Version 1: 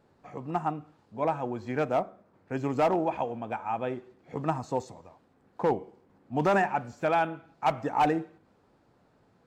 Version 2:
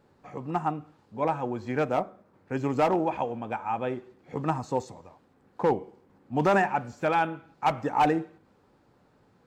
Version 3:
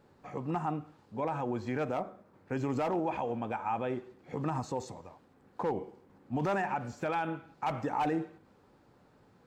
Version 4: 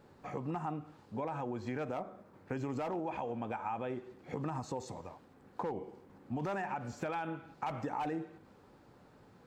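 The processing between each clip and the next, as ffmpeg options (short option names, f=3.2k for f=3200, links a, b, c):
-af "bandreject=f=670:w=12,volume=2dB"
-af "alimiter=limit=-23.5dB:level=0:latency=1:release=55"
-af "acompressor=threshold=-39dB:ratio=3,volume=2.5dB"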